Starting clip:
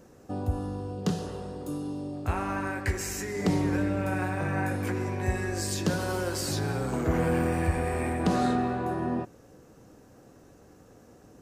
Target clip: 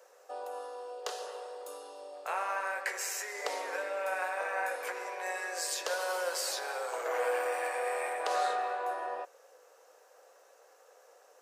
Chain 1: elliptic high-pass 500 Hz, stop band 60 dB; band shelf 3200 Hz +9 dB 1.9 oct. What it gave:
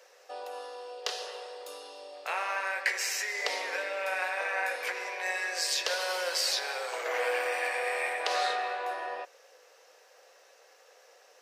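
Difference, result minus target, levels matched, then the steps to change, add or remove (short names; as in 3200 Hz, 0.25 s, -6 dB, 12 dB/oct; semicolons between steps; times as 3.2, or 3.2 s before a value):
4000 Hz band +5.5 dB
remove: band shelf 3200 Hz +9 dB 1.9 oct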